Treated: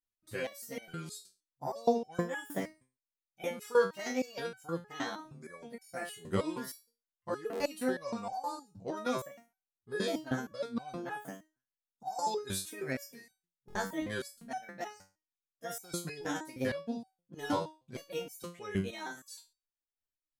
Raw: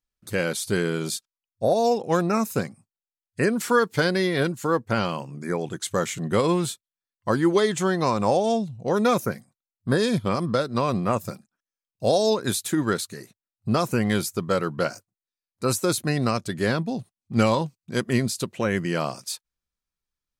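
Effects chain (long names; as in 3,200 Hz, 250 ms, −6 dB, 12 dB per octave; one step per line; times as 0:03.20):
pitch shifter gated in a rhythm +5 semitones, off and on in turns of 438 ms
buffer that repeats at 0:05.80/0:07.51/0:13.66/0:14.32, samples 1,024, times 3
step-sequenced resonator 6.4 Hz 96–760 Hz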